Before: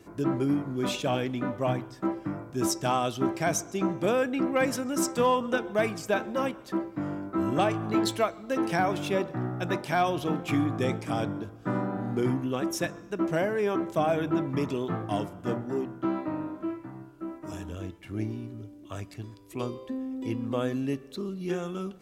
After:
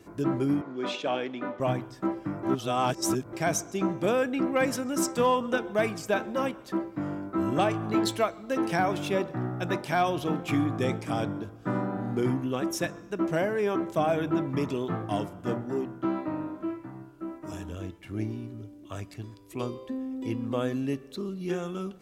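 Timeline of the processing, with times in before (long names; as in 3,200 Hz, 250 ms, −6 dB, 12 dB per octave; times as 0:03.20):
0:00.61–0:01.60: band-pass filter 310–4,300 Hz
0:02.43–0:03.33: reverse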